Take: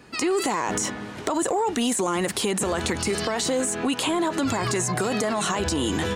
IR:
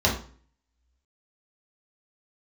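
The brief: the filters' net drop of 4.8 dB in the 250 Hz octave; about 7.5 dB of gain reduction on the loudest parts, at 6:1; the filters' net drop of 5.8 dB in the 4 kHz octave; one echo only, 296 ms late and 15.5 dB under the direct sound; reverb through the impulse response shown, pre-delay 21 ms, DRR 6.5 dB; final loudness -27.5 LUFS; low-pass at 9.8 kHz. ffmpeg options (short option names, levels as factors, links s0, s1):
-filter_complex "[0:a]lowpass=9800,equalizer=f=250:t=o:g=-6.5,equalizer=f=4000:t=o:g=-8,acompressor=threshold=0.0316:ratio=6,aecho=1:1:296:0.168,asplit=2[s0][s1];[1:a]atrim=start_sample=2205,adelay=21[s2];[s1][s2]afir=irnorm=-1:irlink=0,volume=0.0841[s3];[s0][s3]amix=inputs=2:normalize=0,volume=1.68"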